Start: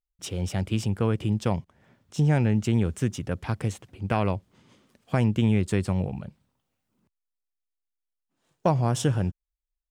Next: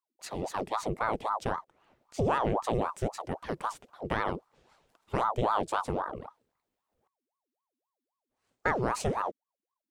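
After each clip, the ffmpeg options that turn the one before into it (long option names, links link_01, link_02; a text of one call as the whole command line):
ffmpeg -i in.wav -af "aeval=exprs='val(0)*sin(2*PI*680*n/s+680*0.65/3.8*sin(2*PI*3.8*n/s))':channel_layout=same,volume=-3.5dB" out.wav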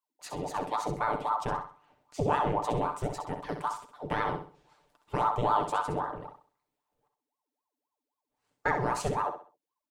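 ffmpeg -i in.wav -af "equalizer=frequency=900:width=5.7:gain=5.5,aecho=1:1:6.8:0.5,aecho=1:1:65|130|195|260:0.398|0.123|0.0383|0.0119,volume=-2.5dB" out.wav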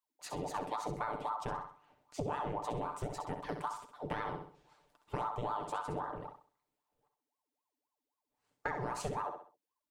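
ffmpeg -i in.wav -af "acompressor=threshold=-31dB:ratio=6,volume=-2.5dB" out.wav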